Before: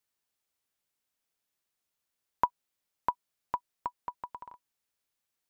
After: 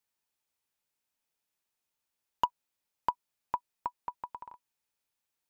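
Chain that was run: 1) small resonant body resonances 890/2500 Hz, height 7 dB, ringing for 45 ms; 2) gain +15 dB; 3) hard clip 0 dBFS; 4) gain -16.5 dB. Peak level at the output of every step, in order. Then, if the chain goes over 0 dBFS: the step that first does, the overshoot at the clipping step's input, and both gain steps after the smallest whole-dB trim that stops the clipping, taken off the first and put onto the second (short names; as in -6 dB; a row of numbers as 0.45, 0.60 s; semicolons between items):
-10.5, +4.5, 0.0, -16.5 dBFS; step 2, 4.5 dB; step 2 +10 dB, step 4 -11.5 dB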